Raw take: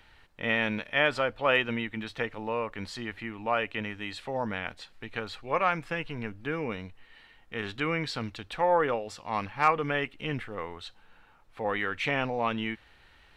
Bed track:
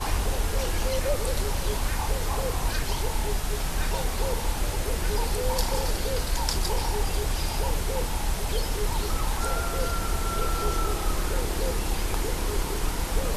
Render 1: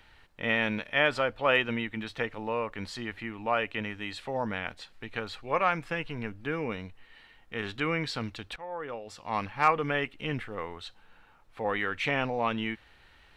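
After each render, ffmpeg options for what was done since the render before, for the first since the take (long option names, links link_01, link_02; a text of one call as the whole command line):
ffmpeg -i in.wav -filter_complex "[0:a]asplit=2[link_01][link_02];[link_01]atrim=end=8.56,asetpts=PTS-STARTPTS,afade=type=out:start_time=8.556:duration=0.004:curve=hsin:silence=0.149624[link_03];[link_02]atrim=start=8.56,asetpts=PTS-STARTPTS,afade=type=in:duration=0.73:curve=qua:silence=0.149624[link_04];[link_03][link_04]concat=n=2:v=0:a=1" out.wav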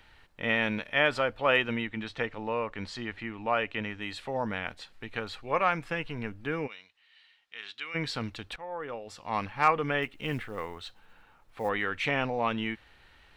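ffmpeg -i in.wav -filter_complex "[0:a]asettb=1/sr,asplit=3[link_01][link_02][link_03];[link_01]atrim=end=1.874[link_04];[link_02]atrim=start=1.87:end=4.02,asetpts=PTS-STARTPTS,afade=type=in:duration=0.004:curve=qsin,afade=type=out:start_time=2.146:duration=0.004:curve=qsin,lowpass=7300[link_05];[link_03]atrim=start=4.016[link_06];[link_04][link_05]acrossfade=duration=0.004:curve1=hsin:curve2=qsin[link_07];[link_07][link_06]acrossfade=duration=0.004:curve1=qsin:curve2=hsin,asplit=3[link_08][link_09][link_10];[link_08]afade=type=out:start_time=6.66:duration=0.02[link_11];[link_09]bandpass=frequency=3900:width_type=q:width=1.2,afade=type=in:start_time=6.66:duration=0.02,afade=type=out:start_time=7.94:duration=0.02[link_12];[link_10]afade=type=in:start_time=7.94:duration=0.02[link_13];[link_11][link_12][link_13]amix=inputs=3:normalize=0,asettb=1/sr,asplit=3[link_14][link_15][link_16];[link_14]atrim=end=10.024[link_17];[link_15]atrim=start=10.02:end=11.69,asetpts=PTS-STARTPTS,afade=type=in:duration=0.004:curve=qsin,afade=type=out:start_time=1.666:duration=0.004:curve=qsin,acrusher=bits=7:mode=log:mix=0:aa=0.000001[link_18];[link_16]atrim=start=11.686[link_19];[link_17][link_18]acrossfade=duration=0.004:curve1=hsin:curve2=qsin[link_20];[link_20][link_19]acrossfade=duration=0.004:curve1=qsin:curve2=hsin" out.wav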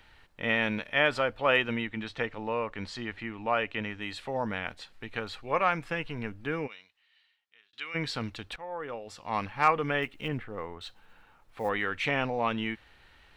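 ffmpeg -i in.wav -filter_complex "[0:a]asettb=1/sr,asplit=3[link_01][link_02][link_03];[link_01]atrim=end=10.284[link_04];[link_02]atrim=start=10.28:end=10.81,asetpts=PTS-STARTPTS,afade=type=in:duration=0.004:curve=qsin,afade=type=out:start_time=0.526:duration=0.004:curve=qsin,lowpass=frequency=1300:poles=1[link_05];[link_03]atrim=start=10.806[link_06];[link_04][link_05]acrossfade=duration=0.004:curve1=hsin:curve2=qsin[link_07];[link_07][link_06]acrossfade=duration=0.004:curve1=qsin:curve2=hsin,asplit=2[link_08][link_09];[link_08]atrim=end=7.73,asetpts=PTS-STARTPTS,afade=type=out:start_time=6.55:duration=1.18[link_10];[link_09]atrim=start=7.73,asetpts=PTS-STARTPTS,afade=type=in:duration=0.004:curve=hsin[link_11];[link_10][link_11]concat=n=2:v=0:a=1" out.wav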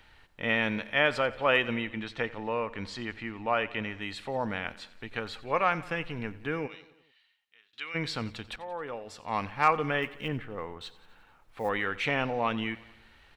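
ffmpeg -i in.wav -af "aecho=1:1:89|178|267|356|445:0.112|0.0662|0.0391|0.023|0.0136" out.wav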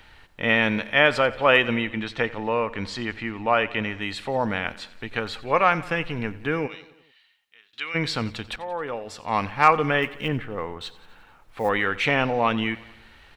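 ffmpeg -i in.wav -af "volume=7dB" out.wav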